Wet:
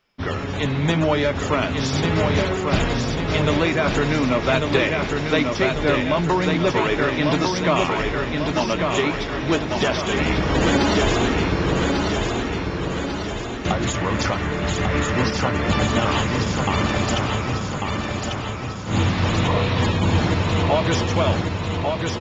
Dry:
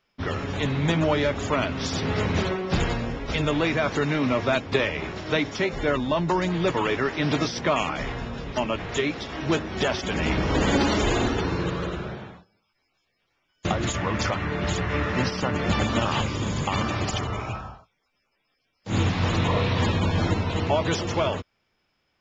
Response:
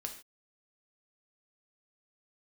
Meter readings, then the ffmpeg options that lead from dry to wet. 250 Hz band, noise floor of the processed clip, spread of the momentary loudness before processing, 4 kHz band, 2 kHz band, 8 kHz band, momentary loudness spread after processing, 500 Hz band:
+5.0 dB, −27 dBFS, 7 LU, +5.0 dB, +5.0 dB, can't be measured, 6 LU, +5.0 dB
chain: -af "aecho=1:1:1145|2290|3435|4580|5725|6870|8015:0.631|0.341|0.184|0.0994|0.0537|0.029|0.0156,volume=3dB"

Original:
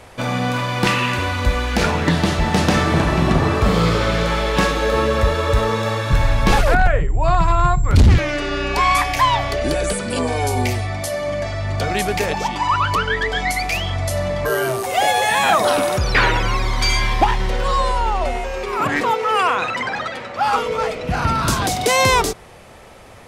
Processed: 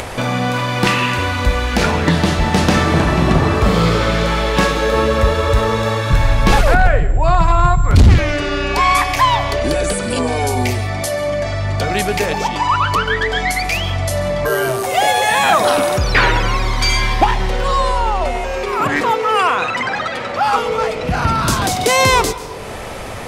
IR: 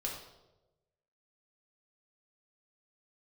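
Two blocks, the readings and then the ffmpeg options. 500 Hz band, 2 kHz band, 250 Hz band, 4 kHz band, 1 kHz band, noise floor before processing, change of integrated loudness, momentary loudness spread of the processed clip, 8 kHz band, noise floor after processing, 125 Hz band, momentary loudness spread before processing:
+3.0 dB, +2.5 dB, +3.0 dB, +2.5 dB, +2.5 dB, −32 dBFS, +3.0 dB, 6 LU, +2.5 dB, −25 dBFS, +3.0 dB, 7 LU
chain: -filter_complex "[0:a]asplit=2[link_01][link_02];[1:a]atrim=start_sample=2205,adelay=136[link_03];[link_02][link_03]afir=irnorm=-1:irlink=0,volume=-17.5dB[link_04];[link_01][link_04]amix=inputs=2:normalize=0,acompressor=mode=upward:threshold=-18dB:ratio=2.5,volume=2.5dB"

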